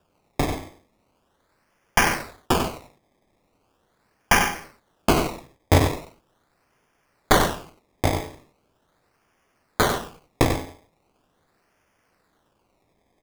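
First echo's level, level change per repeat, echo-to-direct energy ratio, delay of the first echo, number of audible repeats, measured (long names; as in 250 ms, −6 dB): −7.5 dB, repeats not evenly spaced, −7.5 dB, 94 ms, 1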